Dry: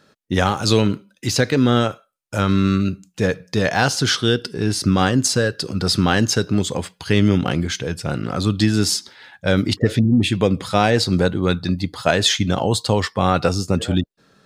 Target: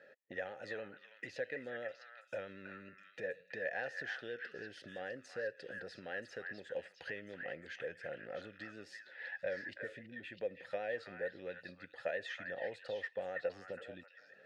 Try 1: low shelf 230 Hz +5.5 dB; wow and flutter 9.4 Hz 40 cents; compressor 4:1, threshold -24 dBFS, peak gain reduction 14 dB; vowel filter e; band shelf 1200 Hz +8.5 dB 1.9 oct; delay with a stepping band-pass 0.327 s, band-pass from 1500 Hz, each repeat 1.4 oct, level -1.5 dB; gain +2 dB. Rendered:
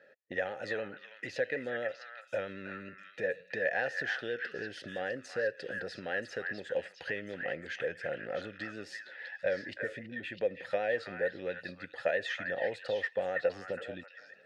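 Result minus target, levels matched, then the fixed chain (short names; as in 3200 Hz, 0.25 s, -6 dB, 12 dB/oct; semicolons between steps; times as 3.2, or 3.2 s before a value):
compressor: peak gain reduction -8 dB
low shelf 230 Hz +5.5 dB; wow and flutter 9.4 Hz 40 cents; compressor 4:1, threshold -34.5 dBFS, peak gain reduction 22 dB; vowel filter e; band shelf 1200 Hz +8.5 dB 1.9 oct; delay with a stepping band-pass 0.327 s, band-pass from 1500 Hz, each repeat 1.4 oct, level -1.5 dB; gain +2 dB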